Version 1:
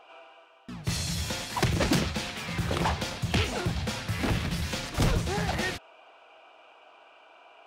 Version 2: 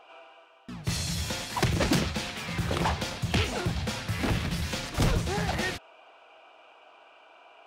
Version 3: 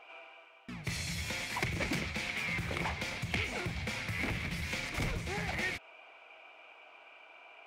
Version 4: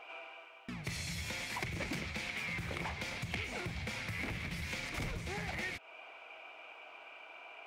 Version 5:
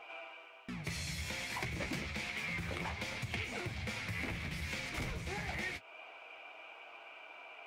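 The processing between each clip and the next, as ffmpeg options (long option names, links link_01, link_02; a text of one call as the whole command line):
ffmpeg -i in.wav -af anull out.wav
ffmpeg -i in.wav -af "acompressor=threshold=-34dB:ratio=2,equalizer=frequency=2200:width=3.7:gain=13.5,volume=-4dB" out.wav
ffmpeg -i in.wav -af "acompressor=threshold=-45dB:ratio=2,volume=3dB" out.wav
ffmpeg -i in.wav -af "flanger=delay=8.7:depth=7.1:regen=-32:speed=0.29:shape=sinusoidal,volume=3.5dB" out.wav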